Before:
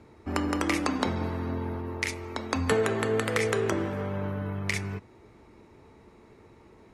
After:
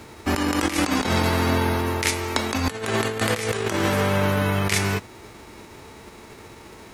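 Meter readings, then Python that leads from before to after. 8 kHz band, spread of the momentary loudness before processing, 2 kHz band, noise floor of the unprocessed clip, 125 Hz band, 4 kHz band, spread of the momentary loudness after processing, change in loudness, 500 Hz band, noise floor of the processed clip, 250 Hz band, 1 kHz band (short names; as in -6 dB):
+10.0 dB, 7 LU, +7.0 dB, -55 dBFS, +7.5 dB, +10.5 dB, 4 LU, +6.5 dB, +4.0 dB, -45 dBFS, +6.0 dB, +8.0 dB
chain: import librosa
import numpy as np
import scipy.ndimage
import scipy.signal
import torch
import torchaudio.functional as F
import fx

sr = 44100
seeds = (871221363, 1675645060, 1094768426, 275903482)

y = fx.envelope_flatten(x, sr, power=0.6)
y = fx.over_compress(y, sr, threshold_db=-30.0, ratio=-0.5)
y = y * librosa.db_to_amplitude(8.5)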